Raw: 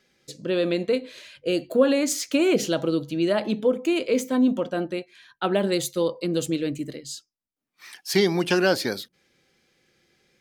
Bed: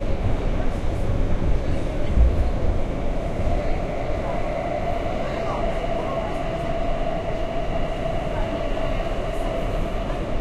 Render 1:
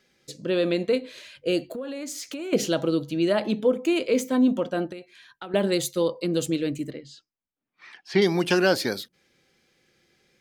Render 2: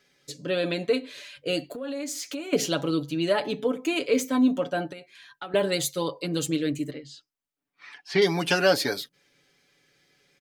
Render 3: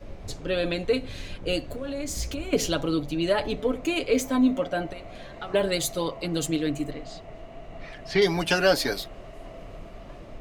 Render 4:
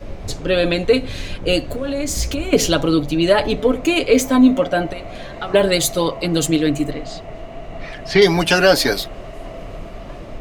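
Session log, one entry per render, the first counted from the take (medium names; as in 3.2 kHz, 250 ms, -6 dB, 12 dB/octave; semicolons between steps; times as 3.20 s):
1.65–2.53 s: compression 5:1, threshold -32 dBFS; 4.92–5.54 s: compression 8:1, threshold -34 dBFS; 6.90–8.22 s: low-pass 2.8 kHz
bass shelf 360 Hz -4.5 dB; comb 7 ms
add bed -17 dB
trim +9.5 dB; peak limiter -2 dBFS, peak gain reduction 2.5 dB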